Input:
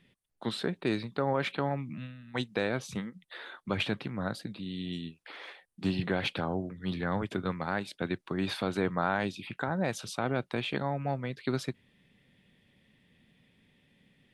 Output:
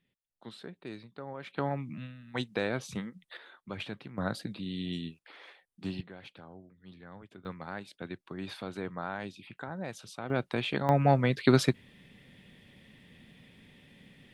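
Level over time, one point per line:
−13 dB
from 0:01.57 −1 dB
from 0:03.37 −8.5 dB
from 0:04.18 +1 dB
from 0:05.19 −6.5 dB
from 0:06.01 −18 dB
from 0:07.45 −8 dB
from 0:10.30 +1 dB
from 0:10.89 +9 dB

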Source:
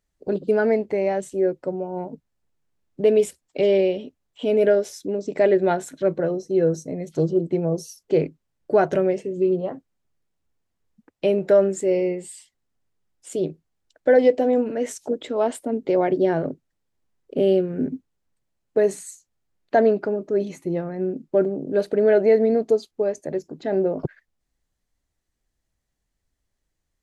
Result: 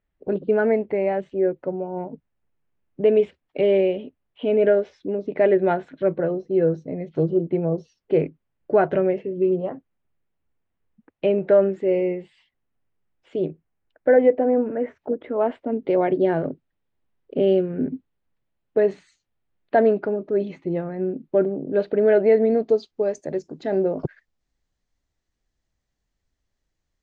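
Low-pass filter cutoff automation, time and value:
low-pass filter 24 dB per octave
0:13.40 3,000 Hz
0:14.53 1,900 Hz
0:15.17 1,900 Hz
0:15.93 3,600 Hz
0:22.46 3,600 Hz
0:23.13 7,000 Hz

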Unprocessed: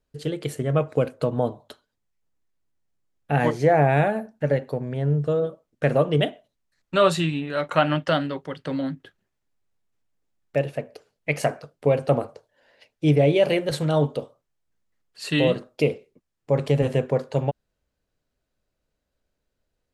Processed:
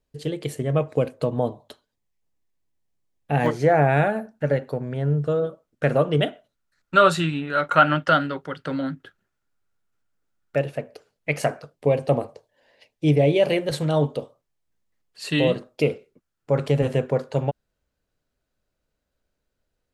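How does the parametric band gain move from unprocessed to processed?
parametric band 1,400 Hz 0.28 octaves
−6.5 dB
from 0:03.46 +5.5 dB
from 0:06.27 +12 dB
from 0:10.60 +2.5 dB
from 0:11.75 −9.5 dB
from 0:13.40 −2.5 dB
from 0:15.82 +9.5 dB
from 0:16.67 +3 dB

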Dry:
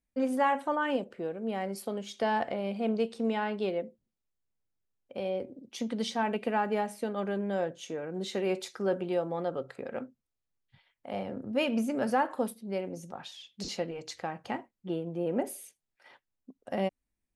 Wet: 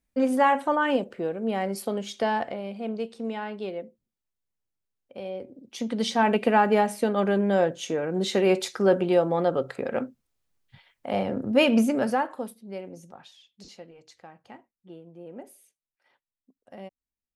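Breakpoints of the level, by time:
0:02.07 +6 dB
0:02.71 −2 dB
0:05.39 −2 dB
0:06.29 +9 dB
0:11.82 +9 dB
0:12.42 −3 dB
0:12.99 −3 dB
0:13.79 −11.5 dB

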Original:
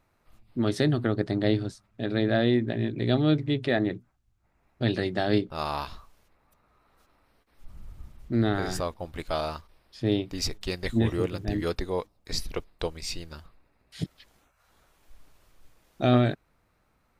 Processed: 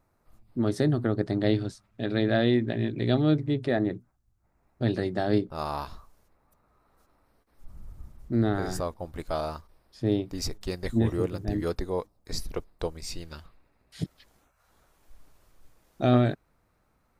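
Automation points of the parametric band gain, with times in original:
parametric band 2,900 Hz 1.5 octaves
0:00.97 −9.5 dB
0:01.60 0 dB
0:03.02 0 dB
0:03.43 −8.5 dB
0:13.10 −8.5 dB
0:13.33 +2.5 dB
0:14.01 −4.5 dB

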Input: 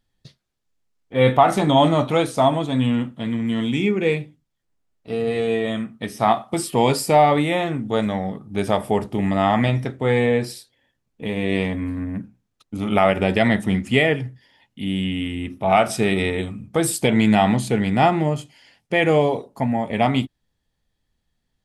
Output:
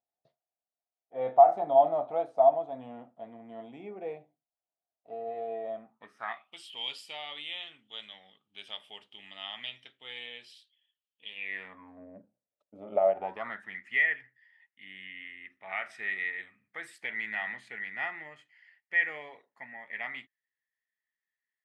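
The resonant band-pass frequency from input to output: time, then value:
resonant band-pass, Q 8.5
0:05.84 700 Hz
0:06.57 3,100 Hz
0:11.32 3,100 Hz
0:12.03 590 Hz
0:13.05 590 Hz
0:13.73 1,900 Hz

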